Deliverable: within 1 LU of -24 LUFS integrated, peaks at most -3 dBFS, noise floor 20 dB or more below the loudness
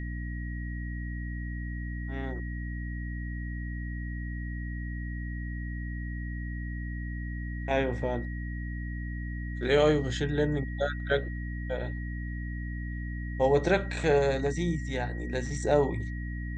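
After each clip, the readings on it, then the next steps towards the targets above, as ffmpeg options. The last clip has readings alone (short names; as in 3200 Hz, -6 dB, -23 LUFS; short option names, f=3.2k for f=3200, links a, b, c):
hum 60 Hz; harmonics up to 300 Hz; hum level -33 dBFS; steady tone 1900 Hz; tone level -44 dBFS; loudness -32.0 LUFS; peak -11.5 dBFS; loudness target -24.0 LUFS
-> -af "bandreject=f=60:t=h:w=4,bandreject=f=120:t=h:w=4,bandreject=f=180:t=h:w=4,bandreject=f=240:t=h:w=4,bandreject=f=300:t=h:w=4"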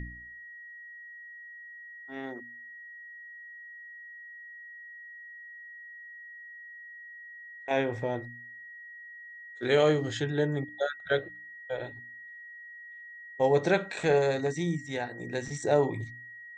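hum none; steady tone 1900 Hz; tone level -44 dBFS
-> -af "bandreject=f=1.9k:w=30"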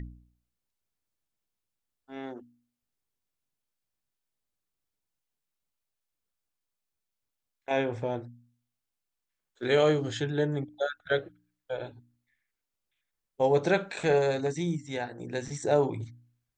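steady tone none; loudness -29.0 LUFS; peak -12.0 dBFS; loudness target -24.0 LUFS
-> -af "volume=5dB"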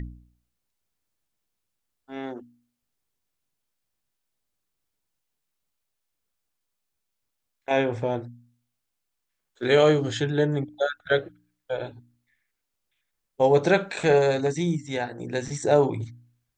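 loudness -24.0 LUFS; peak -7.0 dBFS; noise floor -81 dBFS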